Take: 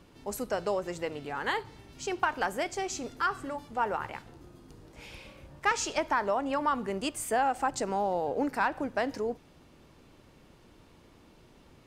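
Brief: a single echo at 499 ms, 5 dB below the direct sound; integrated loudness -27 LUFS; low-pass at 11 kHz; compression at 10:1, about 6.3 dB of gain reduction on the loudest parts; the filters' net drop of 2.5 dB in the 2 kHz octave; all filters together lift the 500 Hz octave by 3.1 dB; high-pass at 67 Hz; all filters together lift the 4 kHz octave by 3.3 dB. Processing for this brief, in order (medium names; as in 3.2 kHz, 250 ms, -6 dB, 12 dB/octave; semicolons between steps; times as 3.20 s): high-pass 67 Hz; low-pass 11 kHz; peaking EQ 500 Hz +4 dB; peaking EQ 2 kHz -5 dB; peaking EQ 4 kHz +6.5 dB; compression 10:1, threshold -28 dBFS; delay 499 ms -5 dB; trim +6.5 dB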